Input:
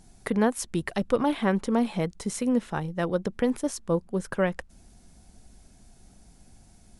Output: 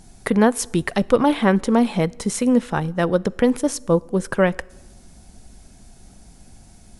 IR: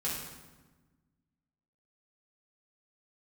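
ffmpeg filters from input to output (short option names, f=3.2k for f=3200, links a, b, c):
-filter_complex "[0:a]asplit=2[a][b];[b]highpass=f=270:w=0.5412,highpass=f=270:w=1.3066[c];[1:a]atrim=start_sample=2205[d];[c][d]afir=irnorm=-1:irlink=0,volume=-26dB[e];[a][e]amix=inputs=2:normalize=0,volume=7.5dB"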